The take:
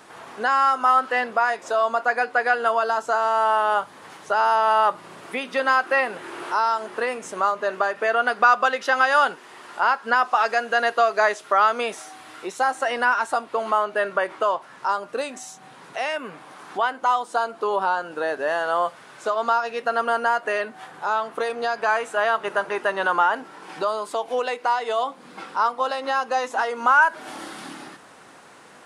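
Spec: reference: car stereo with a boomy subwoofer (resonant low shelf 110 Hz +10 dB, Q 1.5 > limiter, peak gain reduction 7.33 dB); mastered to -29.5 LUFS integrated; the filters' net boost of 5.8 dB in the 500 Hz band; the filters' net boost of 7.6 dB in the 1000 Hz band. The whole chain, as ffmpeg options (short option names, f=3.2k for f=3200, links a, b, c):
-af "lowshelf=f=110:t=q:w=1.5:g=10,equalizer=f=500:t=o:g=4.5,equalizer=f=1k:t=o:g=8.5,volume=-11.5dB,alimiter=limit=-17.5dB:level=0:latency=1"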